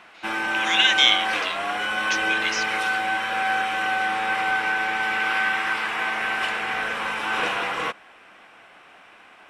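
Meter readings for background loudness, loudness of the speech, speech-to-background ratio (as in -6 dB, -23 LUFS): -23.5 LUFS, -21.5 LUFS, 2.0 dB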